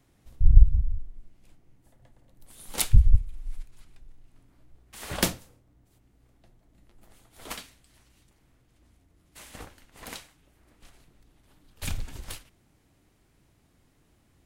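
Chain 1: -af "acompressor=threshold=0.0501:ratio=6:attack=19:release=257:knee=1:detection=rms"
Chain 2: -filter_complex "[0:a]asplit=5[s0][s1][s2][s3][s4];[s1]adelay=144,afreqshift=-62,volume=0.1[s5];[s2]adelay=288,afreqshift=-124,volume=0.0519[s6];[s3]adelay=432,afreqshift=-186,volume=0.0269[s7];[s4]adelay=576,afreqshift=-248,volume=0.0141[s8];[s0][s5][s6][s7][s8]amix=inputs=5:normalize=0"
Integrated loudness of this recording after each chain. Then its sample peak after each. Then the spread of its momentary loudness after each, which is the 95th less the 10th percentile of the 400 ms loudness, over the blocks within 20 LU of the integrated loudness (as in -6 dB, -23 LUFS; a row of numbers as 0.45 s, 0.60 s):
-38.5 LUFS, -28.0 LUFS; -9.5 dBFS, -2.0 dBFS; 23 LU, 23 LU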